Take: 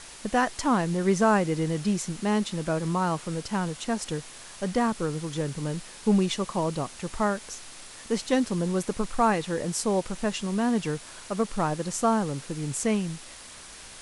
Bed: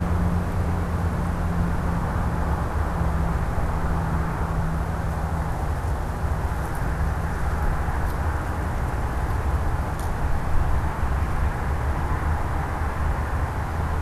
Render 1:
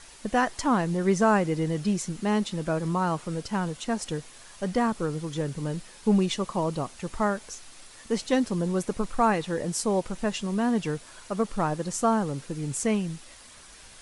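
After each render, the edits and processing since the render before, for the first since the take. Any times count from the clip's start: noise reduction 6 dB, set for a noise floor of -45 dBFS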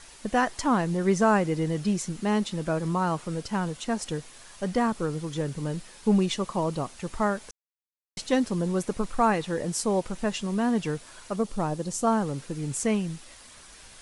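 7.51–8.17 s: mute; 11.36–12.07 s: peaking EQ 1.6 kHz -7 dB 1.5 oct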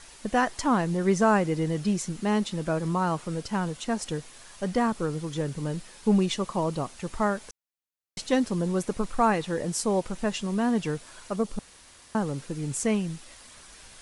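11.59–12.15 s: room tone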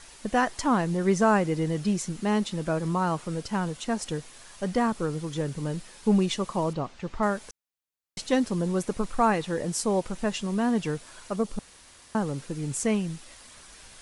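6.73–7.23 s: distance through air 130 m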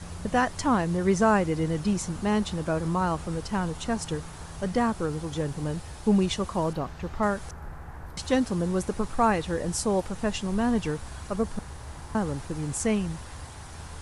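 add bed -16.5 dB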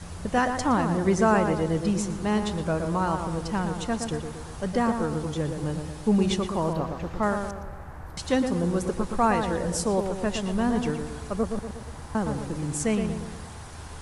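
tape echo 117 ms, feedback 58%, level -4.5 dB, low-pass 1.6 kHz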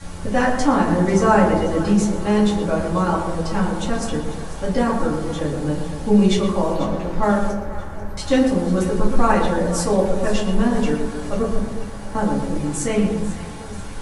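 echo whose repeats swap between lows and highs 246 ms, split 820 Hz, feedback 69%, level -11.5 dB; simulated room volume 140 m³, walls furnished, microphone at 2.3 m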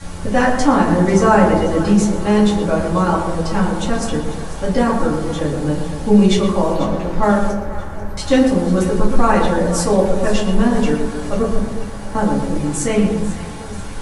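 trim +3.5 dB; peak limiter -1 dBFS, peak gain reduction 2.5 dB

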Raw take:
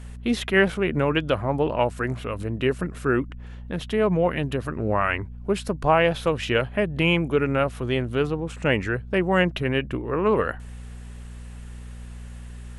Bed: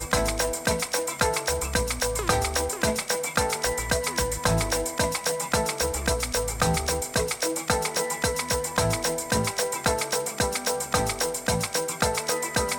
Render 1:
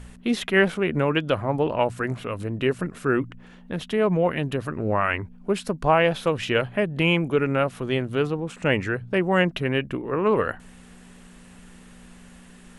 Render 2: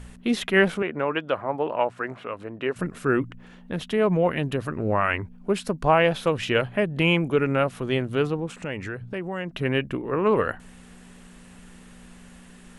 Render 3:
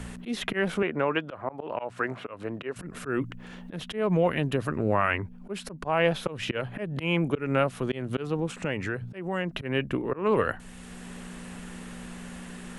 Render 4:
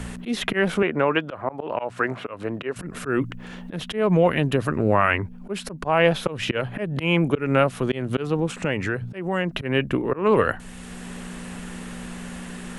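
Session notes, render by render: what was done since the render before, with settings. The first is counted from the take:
de-hum 60 Hz, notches 2
0.82–2.76 s: band-pass filter 1 kHz, Q 0.56; 8.46–9.59 s: compression 2.5:1, threshold -31 dBFS
slow attack 228 ms; three bands compressed up and down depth 40%
trim +5.5 dB

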